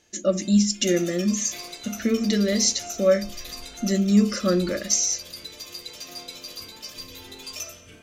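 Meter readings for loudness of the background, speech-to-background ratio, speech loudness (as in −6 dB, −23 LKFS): −36.5 LKFS, 14.0 dB, −22.5 LKFS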